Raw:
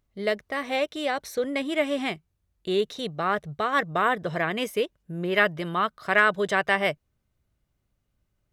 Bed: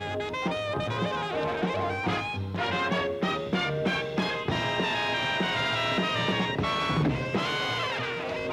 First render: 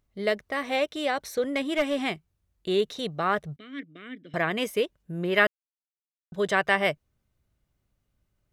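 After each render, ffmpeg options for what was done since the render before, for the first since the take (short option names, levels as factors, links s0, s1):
-filter_complex "[0:a]asettb=1/sr,asplit=3[s0][s1][s2];[s0]atrim=end=1.534[s3];[s1]atrim=start=1.53:end=2.02,asetpts=PTS-STARTPTS,afade=t=in:d=0.004:c=qsin,afade=t=out:st=0.486:d=0.004:c=qsin,aeval=exprs='clip(val(0),-1,0.0891)':c=same[s4];[s2]atrim=start=2.016[s5];[s3][s4]acrossfade=d=0.004:c1=hsin:c2=qsin[s6];[s6][s5]acrossfade=d=0.004:c1=qsin:c2=hsin,asettb=1/sr,asplit=3[s7][s8][s9];[s7]atrim=end=3.564[s10];[s8]atrim=start=3.56:end=4.34,asetpts=PTS-STARTPTS,afade=t=in:d=0.004:c=qsin,afade=t=out:st=0.776:d=0.004:c=qsin,asplit=3[s11][s12][s13];[s11]bandpass=f=270:t=q:w=8,volume=1[s14];[s12]bandpass=f=2290:t=q:w=8,volume=0.501[s15];[s13]bandpass=f=3010:t=q:w=8,volume=0.355[s16];[s14][s15][s16]amix=inputs=3:normalize=0[s17];[s9]atrim=start=4.336[s18];[s10][s17]acrossfade=d=0.004:c1=hsin:c2=qsin[s19];[s19][s18]acrossfade=d=0.004:c1=qsin:c2=hsin,asplit=3[s20][s21][s22];[s20]atrim=end=5.47,asetpts=PTS-STARTPTS,afade=t=out:st=5.466:d=0.004:c=hsin[s23];[s21]atrim=start=5.47:end=6.32,asetpts=PTS-STARTPTS,volume=0[s24];[s22]atrim=start=6.32,asetpts=PTS-STARTPTS,afade=t=in:d=0.004:c=hsin[s25];[s23][s24][s25]concat=n=3:v=0:a=1"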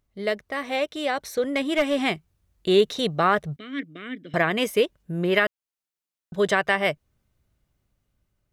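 -af "dynaudnorm=f=750:g=5:m=2.51,alimiter=limit=0.376:level=0:latency=1:release=385"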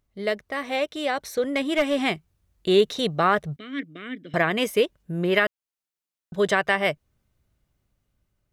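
-af anull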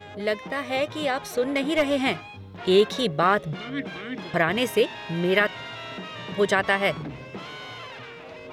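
-filter_complex "[1:a]volume=0.335[s0];[0:a][s0]amix=inputs=2:normalize=0"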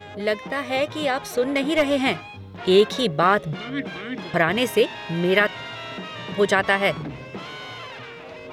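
-af "volume=1.33"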